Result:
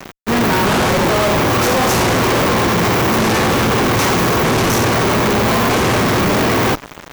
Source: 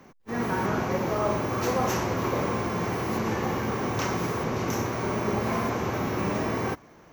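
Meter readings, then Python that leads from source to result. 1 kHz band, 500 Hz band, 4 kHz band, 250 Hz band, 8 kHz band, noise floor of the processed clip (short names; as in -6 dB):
+13.0 dB, +12.5 dB, +20.0 dB, +12.5 dB, +17.5 dB, -36 dBFS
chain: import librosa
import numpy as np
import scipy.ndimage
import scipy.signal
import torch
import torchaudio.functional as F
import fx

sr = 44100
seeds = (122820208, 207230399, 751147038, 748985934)

y = fx.fuzz(x, sr, gain_db=52.0, gate_db=-48.0)
y = fx.upward_expand(y, sr, threshold_db=-25.0, expansion=1.5)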